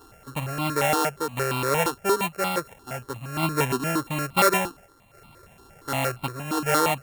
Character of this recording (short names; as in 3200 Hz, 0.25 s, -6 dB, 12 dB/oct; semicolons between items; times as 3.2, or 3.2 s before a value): a buzz of ramps at a fixed pitch in blocks of 32 samples; random-step tremolo; notches that jump at a steady rate 8.6 Hz 590–1700 Hz